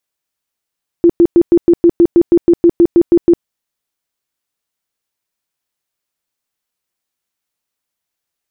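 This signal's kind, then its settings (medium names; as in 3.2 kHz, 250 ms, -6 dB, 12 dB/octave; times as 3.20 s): tone bursts 342 Hz, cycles 19, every 0.16 s, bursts 15, -3.5 dBFS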